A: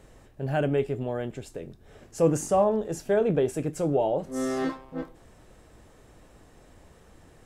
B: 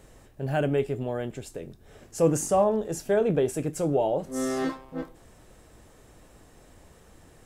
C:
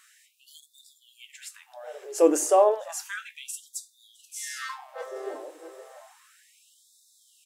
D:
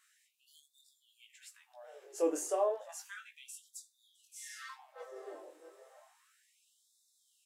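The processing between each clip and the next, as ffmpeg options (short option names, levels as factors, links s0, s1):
-af "highshelf=f=6400:g=6.5"
-filter_complex "[0:a]asplit=2[s0][s1];[s1]adelay=660,lowpass=f=1500:p=1,volume=0.299,asplit=2[s2][s3];[s3]adelay=660,lowpass=f=1500:p=1,volume=0.42,asplit=2[s4][s5];[s5]adelay=660,lowpass=f=1500:p=1,volume=0.42,asplit=2[s6][s7];[s7]adelay=660,lowpass=f=1500:p=1,volume=0.42[s8];[s0][s2][s4][s6][s8]amix=inputs=5:normalize=0,afftfilt=real='re*gte(b*sr/1024,290*pow(3500/290,0.5+0.5*sin(2*PI*0.32*pts/sr)))':imag='im*gte(b*sr/1024,290*pow(3500/290,0.5+0.5*sin(2*PI*0.32*pts/sr)))':win_size=1024:overlap=0.75,volume=1.5"
-af "flanger=delay=15.5:depth=6.9:speed=0.62,volume=0.355"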